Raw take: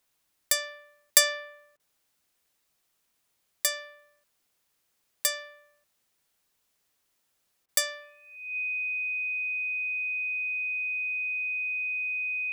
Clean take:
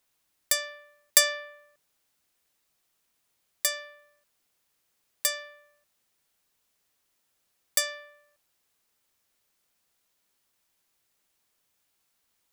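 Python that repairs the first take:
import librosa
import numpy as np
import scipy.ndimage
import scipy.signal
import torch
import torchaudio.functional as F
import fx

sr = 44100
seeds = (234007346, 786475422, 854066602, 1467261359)

y = fx.notch(x, sr, hz=2500.0, q=30.0)
y = fx.fix_interpolate(y, sr, at_s=(1.77, 7.66), length_ms=25.0)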